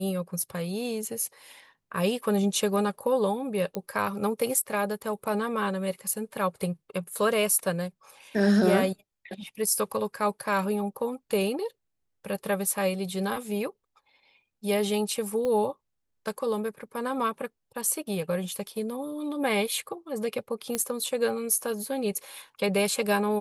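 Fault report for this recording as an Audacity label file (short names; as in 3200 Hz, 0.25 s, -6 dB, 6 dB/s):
3.750000	3.750000	pop -17 dBFS
15.450000	15.450000	pop -19 dBFS
20.750000	20.750000	pop -12 dBFS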